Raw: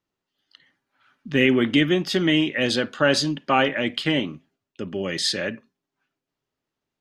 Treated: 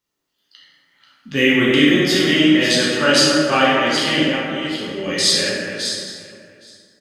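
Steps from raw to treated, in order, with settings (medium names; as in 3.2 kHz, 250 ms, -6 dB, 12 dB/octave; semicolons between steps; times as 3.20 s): chunks repeated in reverse 397 ms, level -8 dB; treble shelf 3.1 kHz +12 dB; on a send: delay 818 ms -21.5 dB; on the sum: plate-style reverb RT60 2 s, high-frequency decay 0.45×, DRR -6.5 dB; trim -4 dB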